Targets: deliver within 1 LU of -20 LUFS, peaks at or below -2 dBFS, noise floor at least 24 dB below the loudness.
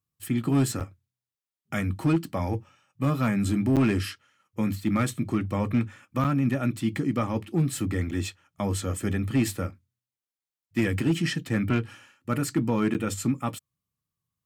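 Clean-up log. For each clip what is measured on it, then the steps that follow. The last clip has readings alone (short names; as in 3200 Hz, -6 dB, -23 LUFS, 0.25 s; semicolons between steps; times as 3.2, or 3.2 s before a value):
clipped 0.5%; flat tops at -16.0 dBFS; dropouts 5; longest dropout 7.7 ms; loudness -27.5 LUFS; peak -16.0 dBFS; loudness target -20.0 LUFS
-> clip repair -16 dBFS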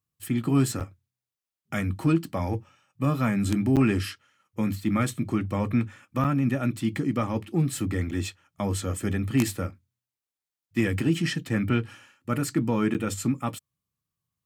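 clipped 0.0%; dropouts 5; longest dropout 7.7 ms
-> interpolate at 0.8/3.76/6.24/8.11/12.94, 7.7 ms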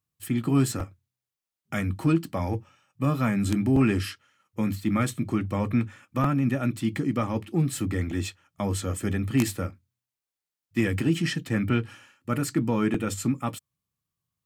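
dropouts 0; loudness -27.0 LUFS; peak -7.0 dBFS; loudness target -20.0 LUFS
-> gain +7 dB; limiter -2 dBFS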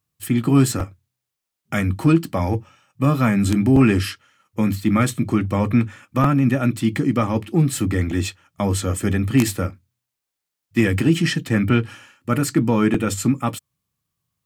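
loudness -20.0 LUFS; peak -2.0 dBFS; noise floor -83 dBFS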